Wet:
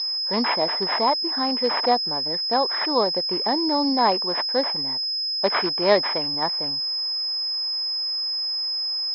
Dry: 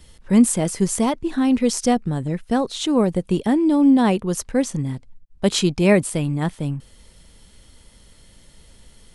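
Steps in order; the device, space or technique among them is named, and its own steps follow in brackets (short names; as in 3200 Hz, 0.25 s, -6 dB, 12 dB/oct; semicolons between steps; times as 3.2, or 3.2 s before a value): toy sound module (decimation joined by straight lines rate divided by 8×; pulse-width modulation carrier 5100 Hz; speaker cabinet 660–4900 Hz, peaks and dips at 940 Hz +4 dB, 1400 Hz -5 dB, 2600 Hz -6 dB, 4000 Hz +4 dB); gain +5 dB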